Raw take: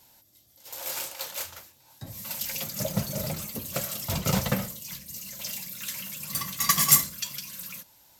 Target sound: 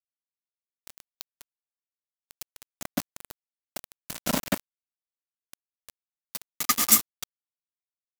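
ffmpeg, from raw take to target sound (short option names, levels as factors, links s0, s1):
-filter_complex "[0:a]afreqshift=70,asplit=2[s0][s1];[s1]adelay=135,lowpass=f=2200:p=1,volume=0.237,asplit=2[s2][s3];[s3]adelay=135,lowpass=f=2200:p=1,volume=0.44,asplit=2[s4][s5];[s5]adelay=135,lowpass=f=2200:p=1,volume=0.44,asplit=2[s6][s7];[s7]adelay=135,lowpass=f=2200:p=1,volume=0.44[s8];[s0][s2][s4][s6][s8]amix=inputs=5:normalize=0,aeval=exprs='val(0)*gte(abs(val(0)),0.0944)':c=same"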